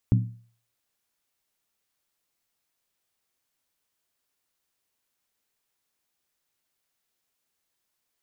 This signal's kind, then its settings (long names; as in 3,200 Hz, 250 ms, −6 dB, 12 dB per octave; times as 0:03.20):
struck skin, lowest mode 116 Hz, decay 0.46 s, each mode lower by 6 dB, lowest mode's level −14 dB